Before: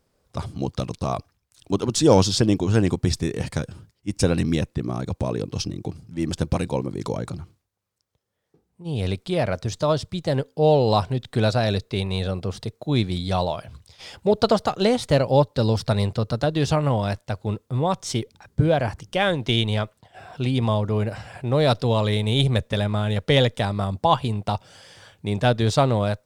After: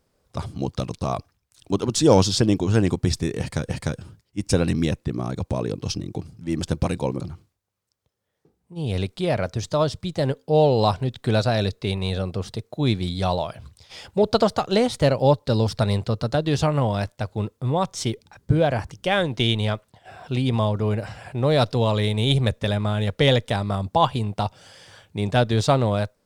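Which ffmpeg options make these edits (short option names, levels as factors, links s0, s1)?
-filter_complex "[0:a]asplit=3[s0][s1][s2];[s0]atrim=end=3.692[s3];[s1]atrim=start=3.388:end=6.902[s4];[s2]atrim=start=7.288[s5];[s3][s4]acrossfade=d=0.004:c1=hsin:c2=hsin[s6];[s6][s5]acrossfade=d=0.004:c1=hsin:c2=hsin"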